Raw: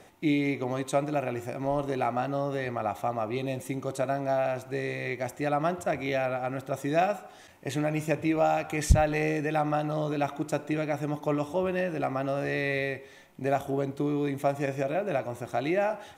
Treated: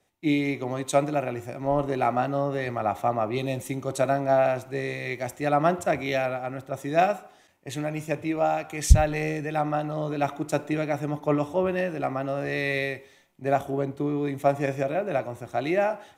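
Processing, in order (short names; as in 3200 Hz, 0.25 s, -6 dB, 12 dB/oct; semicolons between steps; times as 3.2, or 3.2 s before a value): vocal rider 2 s; three-band expander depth 70%; gain +2.5 dB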